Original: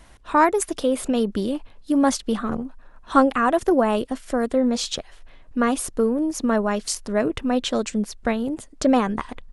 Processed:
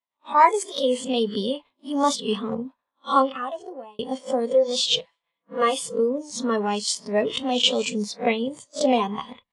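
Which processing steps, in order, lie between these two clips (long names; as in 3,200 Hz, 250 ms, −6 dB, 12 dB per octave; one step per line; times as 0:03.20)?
peak hold with a rise ahead of every peak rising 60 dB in 0.33 s
downward expander −30 dBFS
noise reduction from a noise print of the clip's start 13 dB
0:04.50–0:05.94: comb filter 6 ms, depth 91%
0:07.33–0:07.73: high-shelf EQ 6,000 Hz +9 dB
speech leveller within 4 dB 0.5 s
loudspeaker in its box 250–8,000 Hz, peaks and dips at 320 Hz −9 dB, 1,000 Hz +8 dB, 1,500 Hz −7 dB, 2,100 Hz +5 dB, 3,400 Hz +7 dB, 6,100 Hz −5 dB
0:02.64–0:03.99: fade out
convolution reverb, pre-delay 7 ms, DRR 12.5 dB
wow of a warped record 45 rpm, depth 100 cents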